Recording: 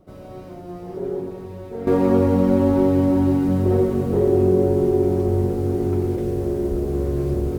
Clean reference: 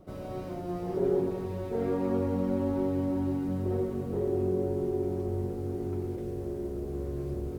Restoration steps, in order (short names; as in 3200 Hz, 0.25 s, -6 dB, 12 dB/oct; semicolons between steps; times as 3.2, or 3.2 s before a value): 6.7–6.82 HPF 140 Hz 24 dB/oct; gain 0 dB, from 1.87 s -12 dB